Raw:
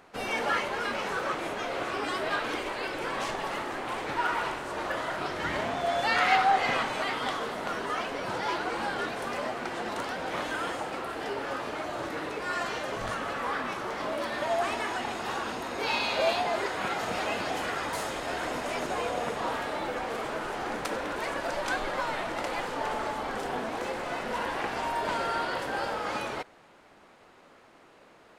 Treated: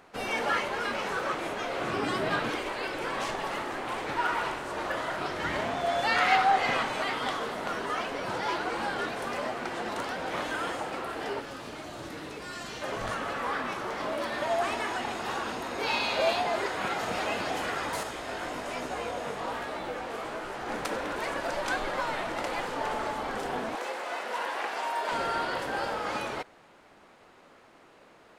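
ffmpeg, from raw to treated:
ffmpeg -i in.wav -filter_complex "[0:a]asettb=1/sr,asplit=3[link_01][link_02][link_03];[link_01]atrim=end=1.834[link_04];[link_02]atrim=start=1.83:end=2.5,asetpts=PTS-STARTPTS,afade=type=in:duration=0.004:curve=qsin,afade=type=out:start_time=0.666:duration=0.004:curve=qsin,equalizer=frequency=150:width_type=o:width=1.7:gain=11.5[link_05];[link_03]atrim=start=2.496[link_06];[link_04][link_05]acrossfade=duration=0.004:curve1=hsin:curve2=qsin[link_07];[link_07][link_06]acrossfade=duration=0.004:curve1=qsin:curve2=hsin,asettb=1/sr,asplit=3[link_08][link_09][link_10];[link_08]atrim=end=11.404[link_11];[link_09]atrim=start=11.4:end=12.82,asetpts=PTS-STARTPTS,afade=type=in:duration=0.004:curve=qsin,afade=type=out:start_time=1.416:duration=0.004:curve=qsin,acrossover=split=290|3000[link_12][link_13][link_14];[link_13]acompressor=threshold=-43dB:ratio=3:attack=3.2:release=140:knee=2.83:detection=peak[link_15];[link_12][link_15][link_14]amix=inputs=3:normalize=0[link_16];[link_10]atrim=start=12.816[link_17];[link_11][link_16]acrossfade=duration=0.004:curve1=hsin:curve2=qsin[link_18];[link_18][link_17]acrossfade=duration=0.004:curve1=qsin:curve2=hsin,asettb=1/sr,asplit=3[link_19][link_20][link_21];[link_19]atrim=end=18.034[link_22];[link_20]atrim=start=18.03:end=20.69,asetpts=PTS-STARTPTS,afade=type=in:duration=0.004:curve=qsin,afade=type=out:start_time=2.656:duration=0.004:curve=qsin,flanger=delay=15.5:depth=5:speed=1.2[link_23];[link_21]atrim=start=20.686[link_24];[link_22][link_23]acrossfade=duration=0.004:curve1=hsin:curve2=qsin[link_25];[link_25][link_24]acrossfade=duration=0.004:curve1=qsin:curve2=hsin,asettb=1/sr,asplit=3[link_26][link_27][link_28];[link_26]atrim=end=23.754[link_29];[link_27]atrim=start=23.75:end=25.12,asetpts=PTS-STARTPTS,afade=type=in:duration=0.004:curve=qsin,afade=type=out:start_time=1.366:duration=0.004:curve=qsin,highpass=470[link_30];[link_28]atrim=start=25.116[link_31];[link_29][link_30]acrossfade=duration=0.004:curve1=hsin:curve2=qsin[link_32];[link_32][link_31]acrossfade=duration=0.004:curve1=qsin:curve2=hsin" out.wav

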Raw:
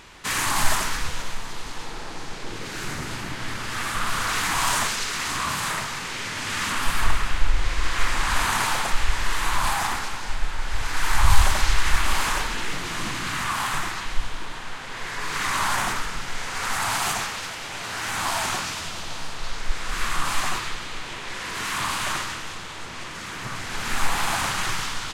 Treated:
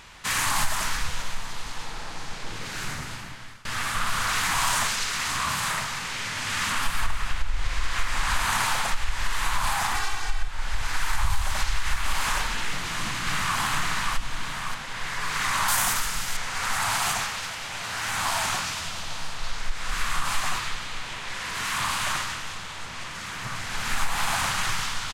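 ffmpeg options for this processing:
ffmpeg -i in.wav -filter_complex "[0:a]asettb=1/sr,asplit=3[link_01][link_02][link_03];[link_01]atrim=end=9.944[link_04];[link_02]atrim=start=9.94:end=10.48,asetpts=PTS-STARTPTS,afade=type=in:duration=0.004:curve=qsin,afade=type=out:start_time=0.536:duration=0.004:curve=qsin,aecho=1:1:2.6:0.86,atrim=end_sample=23814[link_05];[link_03]atrim=start=10.476[link_06];[link_04][link_05]acrossfade=duration=0.004:curve1=hsin:curve2=qsin[link_07];[link_07][link_06]acrossfade=duration=0.004:curve1=qsin:curve2=hsin,asplit=2[link_08][link_09];[link_09]afade=type=in:start_time=12.69:duration=0.01,afade=type=out:start_time=13.58:duration=0.01,aecho=0:1:580|1160|1740|2320|2900|3480|4060|4640:0.749894|0.412442|0.226843|0.124764|0.06862|0.037741|0.0207576|0.0114167[link_10];[link_08][link_10]amix=inputs=2:normalize=0,asettb=1/sr,asplit=3[link_11][link_12][link_13];[link_11]atrim=end=15.684[link_14];[link_12]atrim=start=15.68:end=16.37,asetpts=PTS-STARTPTS,afade=type=in:duration=0.004:curve=qsin,afade=type=out:start_time=0.686:duration=0.004:curve=qsin,aemphasis=mode=production:type=50fm[link_15];[link_13]atrim=start=16.366[link_16];[link_14][link_15]acrossfade=duration=0.004:curve1=hsin:curve2=qsin[link_17];[link_17][link_16]acrossfade=duration=0.004:curve1=qsin:curve2=hsin,asplit=2[link_18][link_19];[link_18]atrim=end=3.65,asetpts=PTS-STARTPTS,afade=type=out:start_time=2.83:duration=0.82:silence=0.0630957[link_20];[link_19]atrim=start=3.65,asetpts=PTS-STARTPTS,afade=type=in:duration=0.004:curve=hsin:silence=0.0630957[link_21];[link_20][link_21]concat=n=2:v=0:a=1,equalizer=frequency=350:width=1.3:gain=-8,acompressor=threshold=-18dB:ratio=6" out.wav

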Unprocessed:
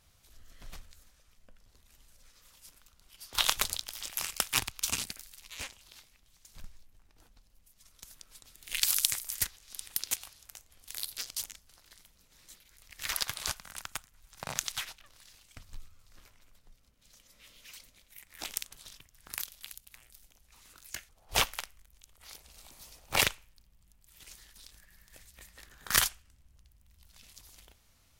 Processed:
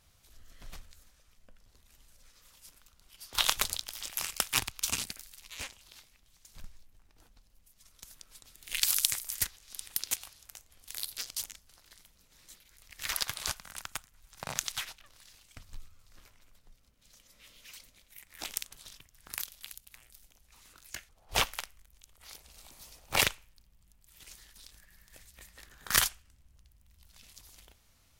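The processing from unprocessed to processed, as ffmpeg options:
ffmpeg -i in.wav -filter_complex "[0:a]asettb=1/sr,asplit=3[link_01][link_02][link_03];[link_01]atrim=end=20.694[link_04];[link_02]atrim=start=20.69:end=21.46,asetpts=PTS-STARTPTS,afade=type=in:duration=0.004:curve=qsin,afade=type=out:start_time=0.766:duration=0.004:curve=qsin,highshelf=frequency=5600:gain=-3.5[link_05];[link_03]atrim=start=21.456[link_06];[link_04][link_05]acrossfade=duration=0.004:curve1=hsin:curve2=qsin[link_07];[link_07][link_06]acrossfade=duration=0.004:curve1=qsin:curve2=hsin" out.wav

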